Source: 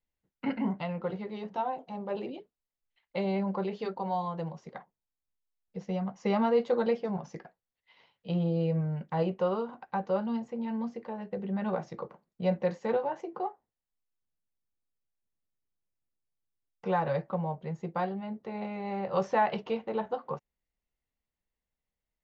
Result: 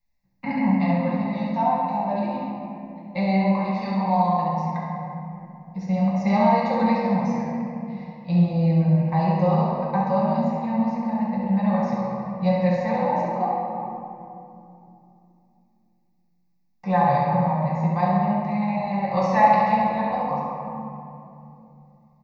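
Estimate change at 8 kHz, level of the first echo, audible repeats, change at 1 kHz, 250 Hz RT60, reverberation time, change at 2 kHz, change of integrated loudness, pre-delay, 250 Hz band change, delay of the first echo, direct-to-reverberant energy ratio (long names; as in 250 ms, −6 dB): can't be measured, −5.0 dB, 1, +13.0 dB, 4.0 s, 2.8 s, +9.5 dB, +10.0 dB, 5 ms, +11.5 dB, 68 ms, −5.5 dB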